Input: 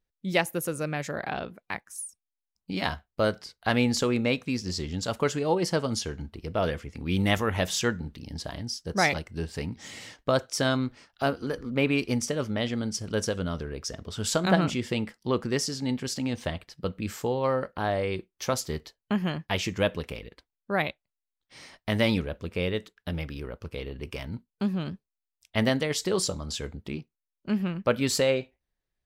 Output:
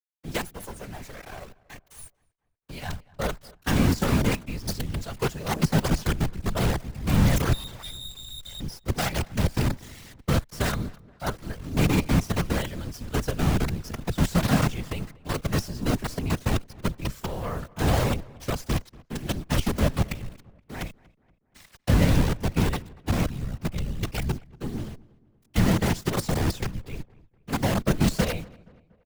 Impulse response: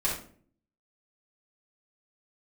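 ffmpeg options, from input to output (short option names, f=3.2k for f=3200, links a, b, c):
-filter_complex "[0:a]asubboost=boost=8.5:cutoff=110,asettb=1/sr,asplit=3[a][b][c];[a]atrim=end=7.534[d];[b]atrim=start=7.53:end=8.6,asetpts=PTS-STARTPTS,afade=t=in:d=0.004:c=qsin,afade=t=out:st=1.066:d=0.004:c=qsin,lowpass=f=3.2k:t=q:w=0.5098,lowpass=f=3.2k:t=q:w=0.6013,lowpass=f=3.2k:t=q:w=0.9,lowpass=f=3.2k:t=q:w=2.563,afreqshift=-3800[e];[c]atrim=start=8.596[f];[d][e]acrossfade=d=0.004:c1=hsin:c2=qsin[g];[g][f]acrossfade=d=0.004:c1=qsin:c2=hsin,acrossover=split=990[h][i];[h]aphaser=in_gain=1:out_gain=1:delay=2.6:decay=0.31:speed=0.5:type=sinusoidal[j];[i]volume=28.5dB,asoftclip=hard,volume=-28.5dB[k];[j][k]amix=inputs=2:normalize=0,asplit=3[l][m][n];[l]afade=t=out:st=19.16:d=0.02[o];[m]bandreject=f=60:t=h:w=6,bandreject=f=120:t=h:w=6,bandreject=f=180:t=h:w=6,bandreject=f=240:t=h:w=6,bandreject=f=300:t=h:w=6,afade=t=in:st=19.16:d=0.02,afade=t=out:st=20.88:d=0.02[p];[n]afade=t=in:st=20.88:d=0.02[q];[o][p][q]amix=inputs=3:normalize=0,adynamicequalizer=threshold=0.01:dfrequency=160:dqfactor=4.5:tfrequency=160:tqfactor=4.5:attack=5:release=100:ratio=0.375:range=2.5:mode=boostabove:tftype=bell,acrusher=bits=4:dc=4:mix=0:aa=0.000001,afftfilt=real='hypot(re,im)*cos(2*PI*random(0))':imag='hypot(re,im)*sin(2*PI*random(1))':win_size=512:overlap=0.75,afreqshift=-14,asplit=2[r][s];[s]adelay=237,lowpass=f=2.3k:p=1,volume=-23dB,asplit=2[t][u];[u]adelay=237,lowpass=f=2.3k:p=1,volume=0.5,asplit=2[v][w];[w]adelay=237,lowpass=f=2.3k:p=1,volume=0.5[x];[t][v][x]amix=inputs=3:normalize=0[y];[r][y]amix=inputs=2:normalize=0,volume=2.5dB"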